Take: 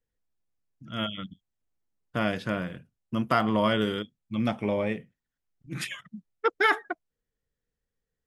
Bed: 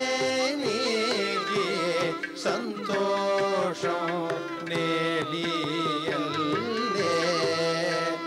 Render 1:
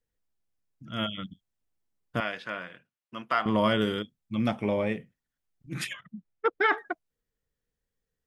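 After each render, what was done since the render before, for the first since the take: 2.20–3.46 s: band-pass filter 1.9 kHz, Q 0.64; 5.93–6.78 s: distance through air 240 m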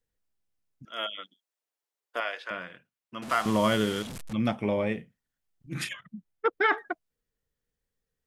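0.85–2.51 s: high-pass 420 Hz 24 dB/octave; 3.22–4.33 s: one-bit delta coder 64 kbps, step -33 dBFS; 4.94–5.89 s: doubling 36 ms -10.5 dB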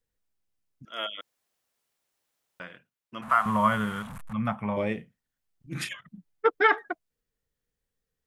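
1.21–2.60 s: room tone; 3.21–4.77 s: FFT filter 210 Hz 0 dB, 330 Hz -17 dB, 1.1 kHz +8 dB, 5.1 kHz -17 dB, 9.7 kHz -6 dB; 6.07–6.72 s: comb 6.8 ms, depth 75%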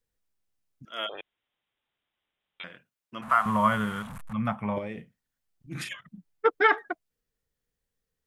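1.09–2.64 s: frequency inversion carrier 3.8 kHz; 4.78–5.87 s: compression, threshold -31 dBFS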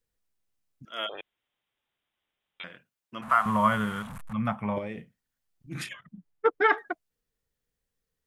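5.86–6.70 s: treble shelf 2.5 kHz -8 dB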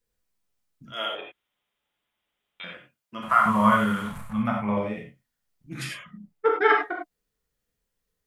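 gated-style reverb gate 120 ms flat, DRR -1 dB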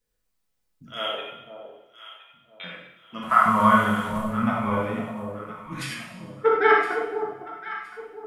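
echo whose repeats swap between lows and highs 508 ms, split 880 Hz, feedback 52%, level -8 dB; two-slope reverb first 0.9 s, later 2.3 s, DRR 2.5 dB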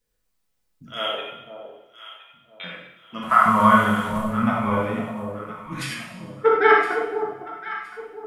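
trim +2.5 dB; peak limiter -3 dBFS, peak gain reduction 1 dB

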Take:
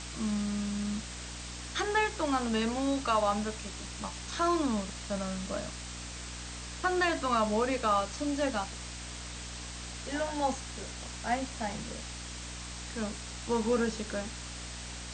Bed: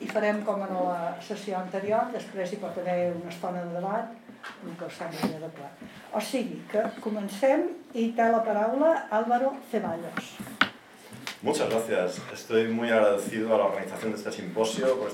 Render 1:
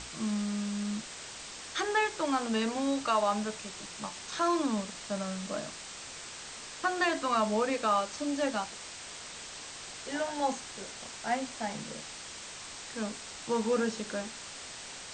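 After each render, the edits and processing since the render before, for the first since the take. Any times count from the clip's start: hum notches 60/120/180/240/300/360 Hz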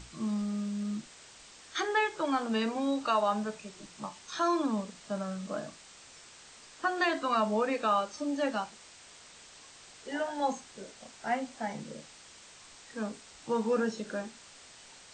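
noise print and reduce 9 dB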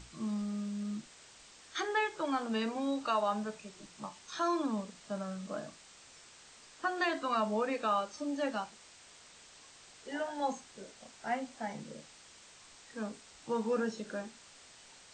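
trim -3.5 dB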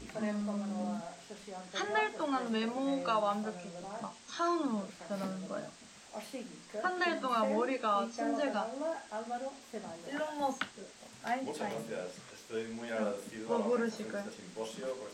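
add bed -14.5 dB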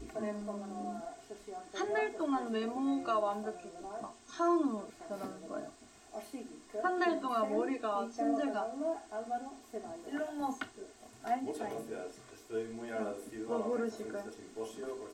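peaking EQ 3.3 kHz -10 dB 3 oct; comb 2.8 ms, depth 83%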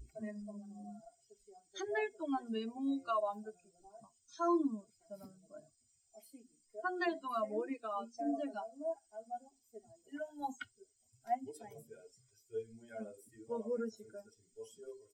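expander on every frequency bin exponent 2

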